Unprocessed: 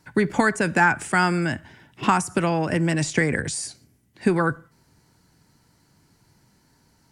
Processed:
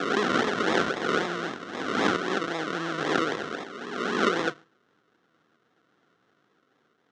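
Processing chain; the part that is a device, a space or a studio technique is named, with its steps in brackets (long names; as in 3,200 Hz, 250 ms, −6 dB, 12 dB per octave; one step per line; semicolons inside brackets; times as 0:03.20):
peak hold with a rise ahead of every peak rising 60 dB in 1.68 s
0:02.16–0:02.99: Chebyshev low-pass filter 1,300 Hz, order 8
circuit-bent sampling toy (sample-and-hold swept by an LFO 42×, swing 60% 3.8 Hz; loudspeaker in its box 400–5,400 Hz, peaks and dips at 600 Hz −8 dB, 910 Hz −7 dB, 1,400 Hz +7 dB, 2,400 Hz −7 dB, 4,700 Hz −7 dB)
level −3 dB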